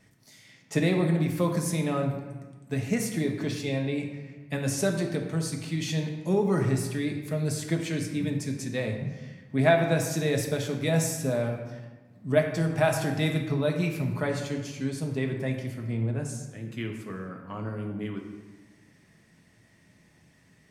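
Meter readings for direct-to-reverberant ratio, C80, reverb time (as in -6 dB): 2.5 dB, 7.5 dB, 1.3 s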